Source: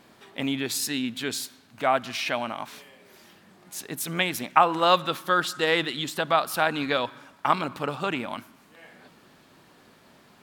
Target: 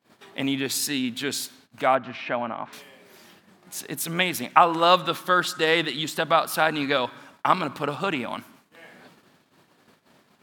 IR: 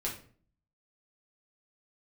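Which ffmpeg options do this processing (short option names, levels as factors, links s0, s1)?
-filter_complex "[0:a]highpass=84,agate=range=0.0562:threshold=0.002:ratio=16:detection=peak,asettb=1/sr,asplit=3[s0][s1][s2];[s0]atrim=end=1.954[s3];[s1]atrim=start=1.95:end=2.73,asetpts=PTS-STARTPTS,afade=t=in:d=0.004:c=qsin,afade=t=out:st=0.776:d=0.004:c=qsin,lowpass=1800[s4];[s2]atrim=start=2.726[s5];[s3][s4]acrossfade=d=0.004:c1=hsin:c2=qsin[s6];[s6][s5]acrossfade=d=0.004:c1=qsin:c2=hsin,volume=1.26"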